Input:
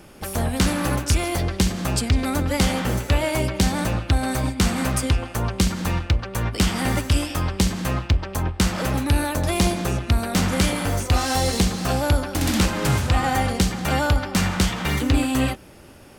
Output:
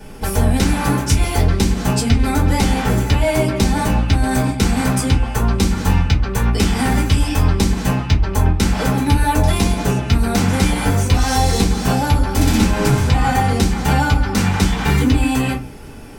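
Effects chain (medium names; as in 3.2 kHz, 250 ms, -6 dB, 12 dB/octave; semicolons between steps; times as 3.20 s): compression, threshold -21 dBFS, peak gain reduction 7.5 dB; reverberation RT60 0.25 s, pre-delay 3 ms, DRR -6 dB; trim -1 dB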